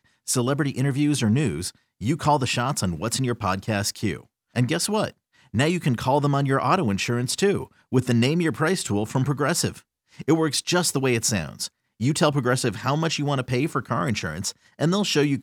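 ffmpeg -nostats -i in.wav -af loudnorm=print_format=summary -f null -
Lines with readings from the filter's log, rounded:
Input Integrated:    -23.8 LUFS
Input True Peak:      -6.5 dBTP
Input LRA:             1.0 LU
Input Threshold:     -33.9 LUFS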